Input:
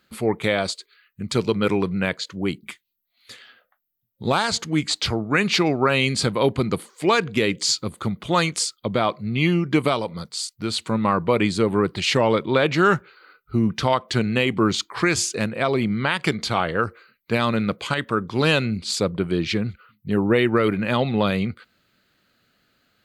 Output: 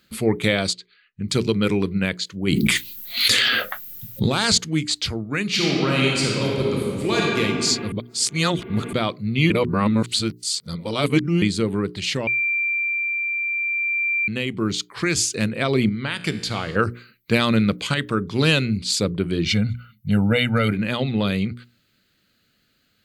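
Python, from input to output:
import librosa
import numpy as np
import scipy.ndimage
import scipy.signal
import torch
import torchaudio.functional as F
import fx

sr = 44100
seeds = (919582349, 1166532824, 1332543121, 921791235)

y = fx.air_absorb(x, sr, metres=140.0, at=(0.73, 1.28))
y = fx.env_flatten(y, sr, amount_pct=100, at=(2.47, 4.58))
y = fx.reverb_throw(y, sr, start_s=5.45, length_s=1.94, rt60_s=2.4, drr_db=-3.5)
y = fx.comb_fb(y, sr, f0_hz=58.0, decay_s=1.5, harmonics='all', damping=0.0, mix_pct=60, at=(15.89, 16.76))
y = fx.comb(y, sr, ms=1.4, depth=0.97, at=(19.45, 20.72))
y = fx.edit(y, sr, fx.reverse_span(start_s=7.92, length_s=1.01),
    fx.reverse_span(start_s=9.5, length_s=1.92),
    fx.bleep(start_s=12.27, length_s=2.01, hz=2360.0, db=-13.0), tone=tone)
y = fx.peak_eq(y, sr, hz=870.0, db=-10.0, octaves=1.9)
y = fx.hum_notches(y, sr, base_hz=60, count=7)
y = fx.rider(y, sr, range_db=10, speed_s=2.0)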